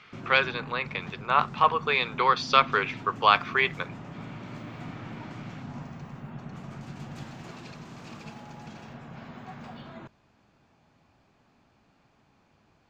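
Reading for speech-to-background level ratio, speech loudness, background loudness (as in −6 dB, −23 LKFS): 17.5 dB, −24.5 LKFS, −42.0 LKFS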